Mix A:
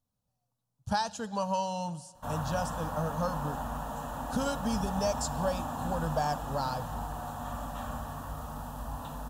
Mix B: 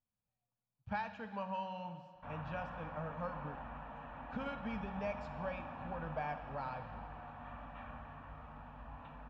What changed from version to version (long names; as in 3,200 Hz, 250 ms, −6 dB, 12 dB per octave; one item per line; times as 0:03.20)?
speech: send +11.5 dB
master: add transistor ladder low-pass 2,400 Hz, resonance 80%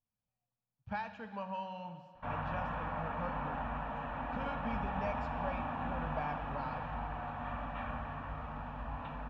background +9.0 dB